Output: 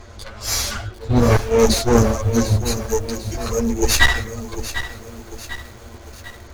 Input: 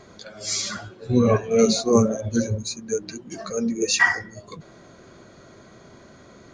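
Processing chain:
lower of the sound and its delayed copy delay 8.7 ms
low shelf with overshoot 100 Hz +13.5 dB, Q 3
asymmetric clip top −20 dBFS
feedback echo at a low word length 748 ms, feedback 55%, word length 7 bits, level −11.5 dB
level +6 dB

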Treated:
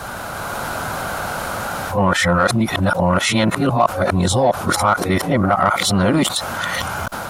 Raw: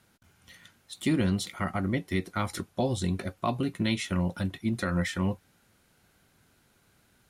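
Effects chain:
played backwards from end to start
automatic gain control gain up to 16 dB
flat-topped bell 880 Hz +12.5 dB
in parallel at −6 dB: soft clipping −6.5 dBFS, distortion −9 dB
on the sum: envelope flattener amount 70%
level −13 dB

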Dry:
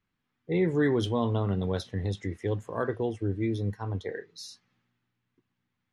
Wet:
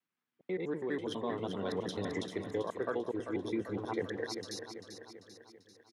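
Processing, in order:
slices reordered back to front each 82 ms, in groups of 2
in parallel at −12 dB: soft clipping −24.5 dBFS, distortion −12 dB
on the sum: high-pass filter 250 Hz 12 dB per octave
repeating echo 392 ms, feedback 53%, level −9 dB
speech leveller within 5 dB 0.5 s
level −6 dB

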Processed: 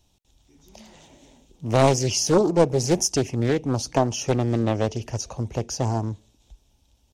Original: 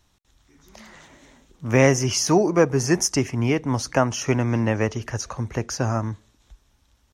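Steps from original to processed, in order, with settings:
flat-topped bell 1,500 Hz −12 dB 1.2 octaves
notch filter 4,100 Hz, Q 27
highs frequency-modulated by the lows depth 0.73 ms

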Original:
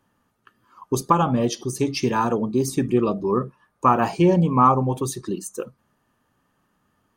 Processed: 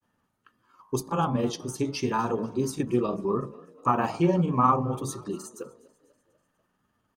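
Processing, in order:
hum removal 53.67 Hz, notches 22
granular cloud, spray 24 ms, pitch spread up and down by 0 semitones
echo with shifted repeats 246 ms, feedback 54%, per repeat +35 Hz, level −22.5 dB
level −4 dB

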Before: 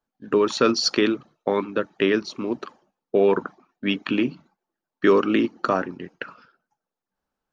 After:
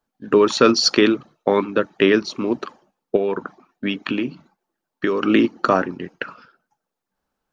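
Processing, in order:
0:03.16–0:05.22: downward compressor 3 to 1, threshold −26 dBFS, peak gain reduction 10.5 dB
level +5 dB

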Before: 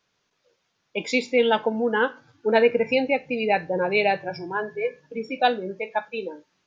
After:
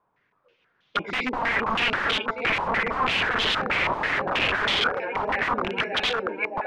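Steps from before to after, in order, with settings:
echo with a time of its own for lows and highs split 370 Hz, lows 113 ms, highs 615 ms, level −4 dB
wrap-around overflow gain 22 dB
low-pass on a step sequencer 6.2 Hz 960–3,300 Hz

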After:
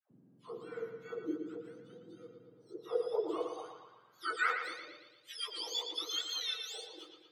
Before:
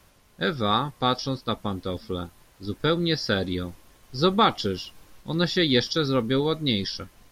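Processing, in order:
frequency axis turned over on the octave scale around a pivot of 1,300 Hz
all-pass dispersion lows, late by 112 ms, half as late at 740 Hz
on a send: bucket-brigade delay 115 ms, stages 4,096, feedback 54%, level −6.5 dB
on the sum: band-pass filter sweep 250 Hz → 2,900 Hz, 0:02.16–0:05.21
level −3 dB

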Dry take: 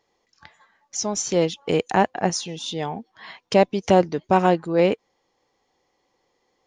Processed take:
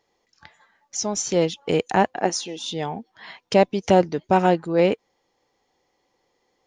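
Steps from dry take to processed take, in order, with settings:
0:02.20–0:02.60: low shelf with overshoot 190 Hz −12 dB, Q 1.5
notch filter 1,100 Hz, Q 17

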